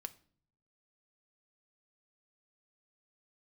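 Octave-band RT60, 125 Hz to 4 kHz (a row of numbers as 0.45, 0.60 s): 1.0, 0.80, 0.60, 0.45, 0.40, 0.40 s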